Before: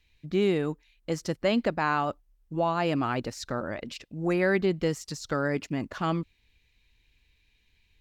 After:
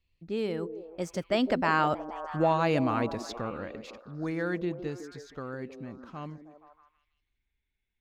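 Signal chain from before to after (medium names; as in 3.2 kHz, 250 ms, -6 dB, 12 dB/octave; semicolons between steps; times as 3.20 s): Doppler pass-by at 2.18 s, 34 m/s, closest 24 m; repeats whose band climbs or falls 158 ms, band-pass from 320 Hz, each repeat 0.7 oct, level -6.5 dB; tape noise reduction on one side only decoder only; trim +2.5 dB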